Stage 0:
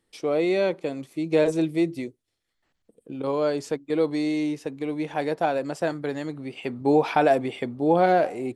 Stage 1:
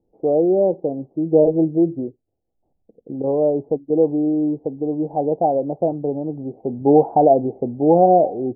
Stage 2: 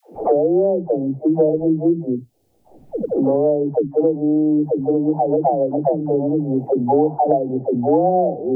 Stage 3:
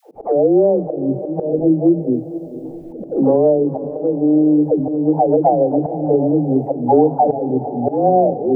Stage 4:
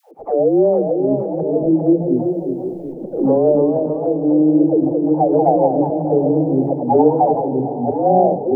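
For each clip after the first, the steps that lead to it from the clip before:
Chebyshev low-pass filter 800 Hz, order 5; level +7 dB
all-pass dispersion lows, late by 145 ms, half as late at 390 Hz; multiband upward and downward compressor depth 100%
volume swells 190 ms; feedback delay with all-pass diffusion 483 ms, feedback 52%, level −13.5 dB; level +3.5 dB
all-pass dispersion lows, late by 40 ms, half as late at 430 Hz; delay with pitch and tempo change per echo 479 ms, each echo +1 semitone, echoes 2, each echo −6 dB; level −1 dB

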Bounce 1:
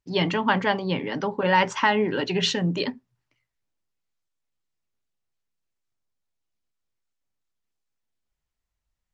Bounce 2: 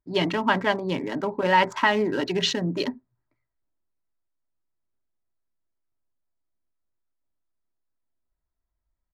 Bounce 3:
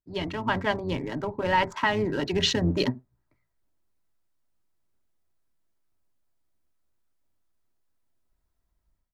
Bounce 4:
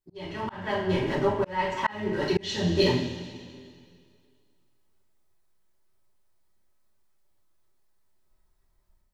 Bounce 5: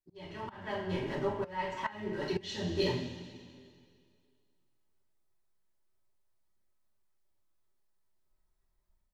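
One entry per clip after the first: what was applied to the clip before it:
adaptive Wiener filter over 15 samples; comb filter 3.1 ms, depth 34%
sub-octave generator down 1 octave, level −4 dB; automatic gain control gain up to 15 dB; level −8.5 dB
coupled-rooms reverb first 0.47 s, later 2.2 s, from −16 dB, DRR −7.5 dB; volume swells 636 ms; level −2 dB
flanger 0.3 Hz, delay 0.4 ms, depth 6.6 ms, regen −80%; level −4 dB

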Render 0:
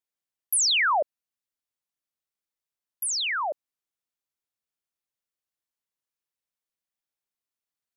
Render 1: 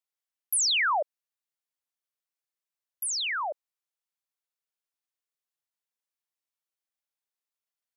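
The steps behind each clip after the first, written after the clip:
high-pass filter 460 Hz
level −2.5 dB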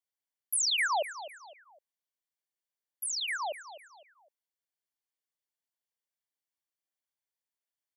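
notch comb filter 1,300 Hz
repeating echo 254 ms, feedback 36%, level −13.5 dB
level −2.5 dB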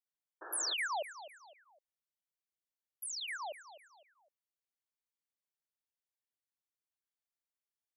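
sound drawn into the spectrogram noise, 0:00.41–0:00.74, 300–1,800 Hz −40 dBFS
level −7.5 dB

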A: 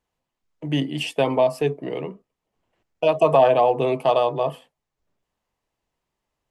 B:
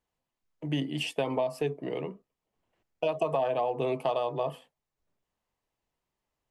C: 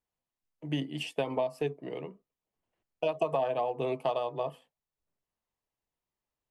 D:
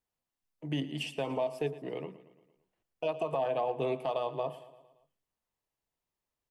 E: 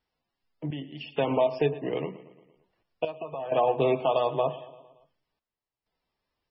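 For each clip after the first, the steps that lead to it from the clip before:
downward compressor 5 to 1, threshold −20 dBFS, peak gain reduction 9 dB; level −5 dB
expander for the loud parts 1.5 to 1, over −38 dBFS
brickwall limiter −22 dBFS, peak gain reduction 6 dB; repeating echo 114 ms, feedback 56%, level −16 dB
gate pattern "xxx..xxxxx" 64 BPM −12 dB; level +8.5 dB; MP3 16 kbit/s 24,000 Hz

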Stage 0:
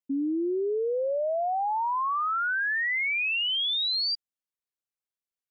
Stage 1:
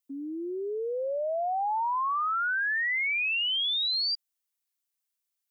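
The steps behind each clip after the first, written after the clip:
high-pass filter 310 Hz
spectral tilt +3 dB per octave
brickwall limiter −25 dBFS, peak gain reduction 7.5 dB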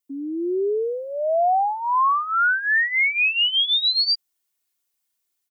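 parametric band 190 Hz +5 dB 1.6 octaves
comb filter 2.8 ms, depth 66%
automatic gain control gain up to 6 dB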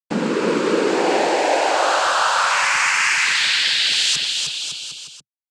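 comparator with hysteresis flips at −33.5 dBFS
cochlear-implant simulation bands 8
bouncing-ball delay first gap 310 ms, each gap 0.8×, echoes 5
level +3 dB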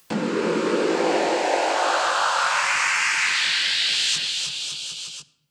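upward compression, threshold −21 dBFS
chorus effect 1 Hz, delay 17.5 ms, depth 5.7 ms
convolution reverb RT60 0.95 s, pre-delay 6 ms, DRR 13.5 dB
level −1 dB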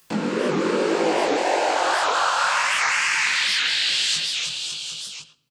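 chorus effect 1.9 Hz, delay 18 ms, depth 6.9 ms
far-end echo of a speakerphone 110 ms, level −11 dB
wow of a warped record 78 rpm, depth 250 cents
level +3 dB

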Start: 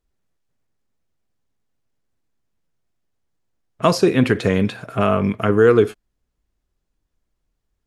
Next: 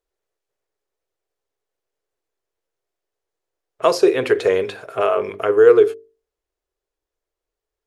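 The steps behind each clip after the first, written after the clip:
low shelf with overshoot 300 Hz −11 dB, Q 3
mains-hum notches 50/100/150/200/250/300/350/400/450 Hz
in parallel at −3 dB: speech leveller 2 s
on the sum: level −7 dB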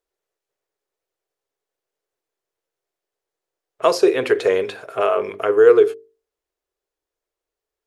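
low-shelf EQ 110 Hz −9 dB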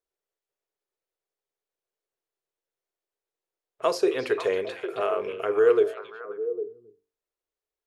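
echo through a band-pass that steps 268 ms, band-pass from 3,000 Hz, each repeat −1.4 octaves, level −4.5 dB
level −8 dB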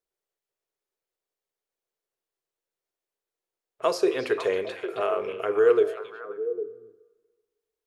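dense smooth reverb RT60 1.5 s, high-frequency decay 0.75×, DRR 16.5 dB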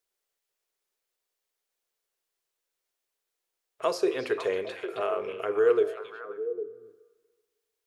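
one half of a high-frequency compander encoder only
level −3 dB

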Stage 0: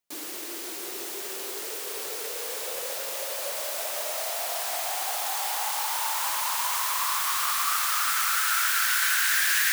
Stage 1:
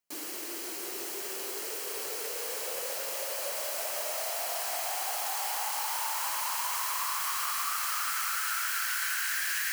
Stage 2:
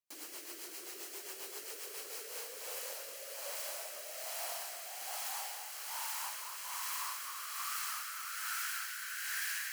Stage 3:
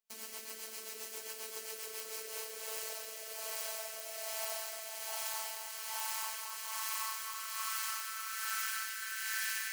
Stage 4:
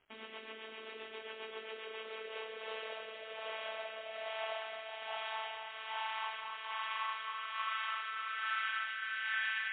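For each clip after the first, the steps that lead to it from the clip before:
notch filter 3,600 Hz, Q 8.9; downward compressor, threshold −26 dBFS, peak gain reduction 6.5 dB; level −2 dB
low-shelf EQ 340 Hz −10.5 dB; rotating-speaker cabinet horn 7.5 Hz, later 1.2 Hz, at 0:01.79; level −5 dB
phases set to zero 220 Hz; level +3.5 dB
surface crackle 400 per second −57 dBFS; level +4.5 dB; MP3 24 kbit/s 8,000 Hz

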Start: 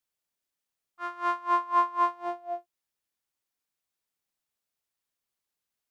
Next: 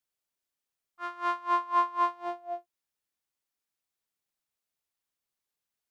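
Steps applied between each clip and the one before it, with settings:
dynamic equaliser 3,600 Hz, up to +4 dB, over −48 dBFS, Q 1.1
level −2 dB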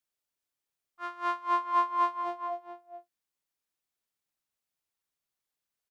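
slap from a distant wall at 73 metres, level −9 dB
level −1 dB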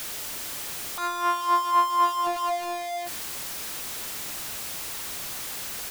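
converter with a step at zero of −30.5 dBFS
level +3.5 dB

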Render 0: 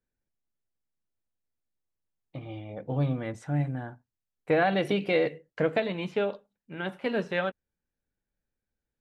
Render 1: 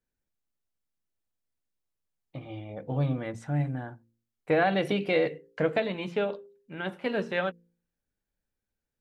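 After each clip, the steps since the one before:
hum removal 57.36 Hz, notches 9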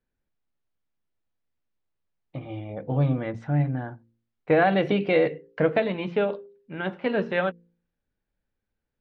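high-frequency loss of the air 220 metres
level +5 dB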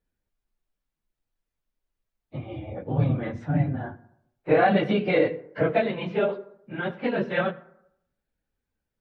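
random phases in long frames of 50 ms
convolution reverb RT60 0.75 s, pre-delay 62 ms, DRR 19 dB

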